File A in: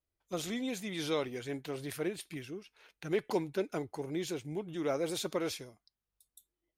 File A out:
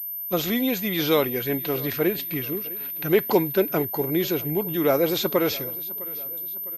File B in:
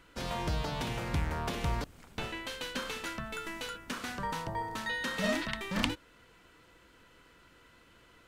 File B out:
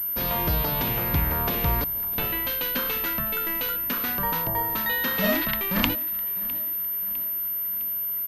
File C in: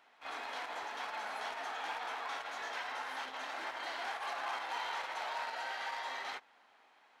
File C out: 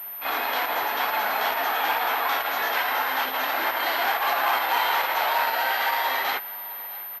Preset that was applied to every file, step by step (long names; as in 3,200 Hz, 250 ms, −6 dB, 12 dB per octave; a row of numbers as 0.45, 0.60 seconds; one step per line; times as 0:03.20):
repeating echo 656 ms, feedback 50%, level −20 dB
switching amplifier with a slow clock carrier 13,000 Hz
loudness normalisation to −24 LKFS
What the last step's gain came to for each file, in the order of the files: +12.5, +7.0, +16.0 decibels